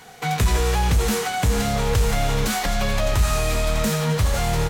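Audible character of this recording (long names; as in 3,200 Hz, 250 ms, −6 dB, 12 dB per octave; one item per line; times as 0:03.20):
background noise floor −30 dBFS
spectral slope −5.0 dB per octave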